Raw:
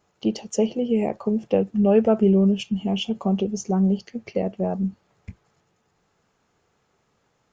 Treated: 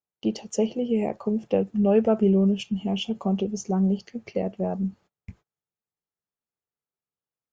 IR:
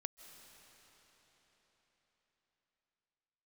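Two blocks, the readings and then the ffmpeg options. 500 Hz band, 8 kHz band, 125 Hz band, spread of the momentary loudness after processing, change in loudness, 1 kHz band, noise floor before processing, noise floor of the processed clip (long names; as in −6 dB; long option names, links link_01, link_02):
−2.5 dB, can't be measured, −2.5 dB, 10 LU, −2.5 dB, −2.5 dB, −69 dBFS, below −85 dBFS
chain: -af "agate=range=-29dB:threshold=-47dB:ratio=16:detection=peak,volume=-2.5dB"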